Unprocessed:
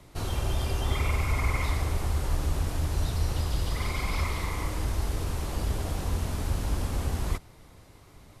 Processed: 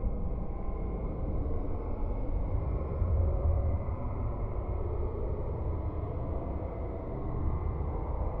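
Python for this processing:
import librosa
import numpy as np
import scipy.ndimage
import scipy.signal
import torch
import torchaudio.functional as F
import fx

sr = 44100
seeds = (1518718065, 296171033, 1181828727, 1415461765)

y = fx.filter_sweep_lowpass(x, sr, from_hz=380.0, to_hz=1900.0, start_s=3.57, end_s=6.45, q=1.6)
y = fx.paulstretch(y, sr, seeds[0], factor=19.0, window_s=0.05, from_s=4.05)
y = fx.echo_split(y, sr, split_hz=330.0, low_ms=186, high_ms=290, feedback_pct=52, wet_db=-5.0)
y = F.gain(torch.from_numpy(y), -4.5).numpy()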